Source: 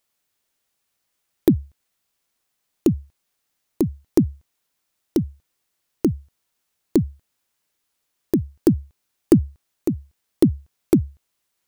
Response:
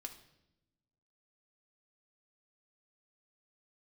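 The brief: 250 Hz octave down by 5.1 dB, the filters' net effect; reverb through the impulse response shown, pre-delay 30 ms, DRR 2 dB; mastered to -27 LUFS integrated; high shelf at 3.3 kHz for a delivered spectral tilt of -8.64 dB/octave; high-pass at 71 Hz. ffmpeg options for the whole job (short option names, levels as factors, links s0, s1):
-filter_complex "[0:a]highpass=71,equalizer=f=250:t=o:g=-7,highshelf=f=3300:g=3.5,asplit=2[s0][s1];[1:a]atrim=start_sample=2205,adelay=30[s2];[s1][s2]afir=irnorm=-1:irlink=0,volume=1.26[s3];[s0][s3]amix=inputs=2:normalize=0,volume=0.841"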